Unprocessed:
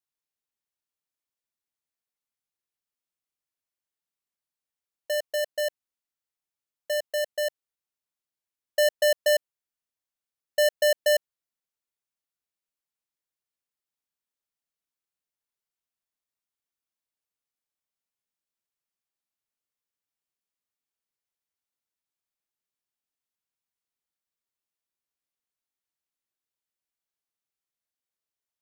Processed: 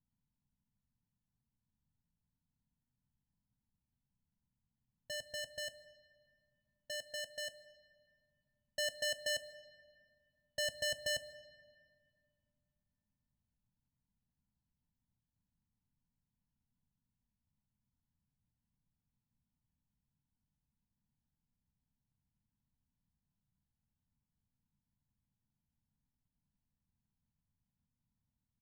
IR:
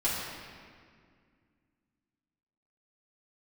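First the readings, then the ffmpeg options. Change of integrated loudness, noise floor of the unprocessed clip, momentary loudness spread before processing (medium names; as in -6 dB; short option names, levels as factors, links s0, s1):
-13.5 dB, under -85 dBFS, 9 LU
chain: -filter_complex "[0:a]acrusher=samples=37:mix=1:aa=0.000001,firequalizer=gain_entry='entry(160,0);entry(230,-4);entry(340,-26);entry(600,-28);entry(990,-8);entry(1500,-18);entry(2300,-24);entry(3500,-15);entry(7900,-18);entry(12000,-28)':delay=0.05:min_phase=1,asplit=2[s0][s1];[1:a]atrim=start_sample=2205[s2];[s1][s2]afir=irnorm=-1:irlink=0,volume=0.106[s3];[s0][s3]amix=inputs=2:normalize=0,volume=2.51"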